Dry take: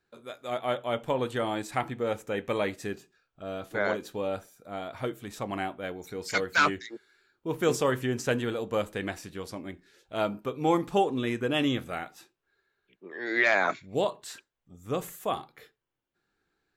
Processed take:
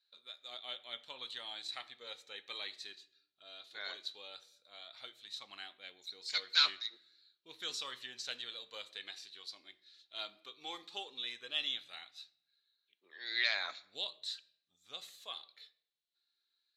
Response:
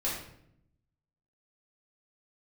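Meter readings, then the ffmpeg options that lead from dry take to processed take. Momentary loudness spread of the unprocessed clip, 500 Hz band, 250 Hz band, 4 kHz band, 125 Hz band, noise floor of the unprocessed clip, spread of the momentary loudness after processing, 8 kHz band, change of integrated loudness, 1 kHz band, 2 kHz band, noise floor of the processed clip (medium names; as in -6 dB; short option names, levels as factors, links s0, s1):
16 LU, -26.0 dB, -31.5 dB, +3.0 dB, under -35 dB, -82 dBFS, 20 LU, -10.0 dB, -9.5 dB, -18.5 dB, -11.5 dB, -85 dBFS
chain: -filter_complex "[0:a]bandpass=f=4000:t=q:w=8.8:csg=0,aphaser=in_gain=1:out_gain=1:delay=2.9:decay=0.3:speed=0.15:type=sinusoidal,asplit=2[s0][s1];[1:a]atrim=start_sample=2205[s2];[s1][s2]afir=irnorm=-1:irlink=0,volume=0.1[s3];[s0][s3]amix=inputs=2:normalize=0,volume=2.99"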